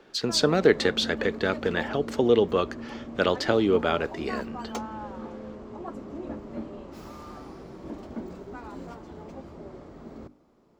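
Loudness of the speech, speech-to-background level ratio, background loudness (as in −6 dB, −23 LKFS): −25.0 LKFS, 13.5 dB, −38.5 LKFS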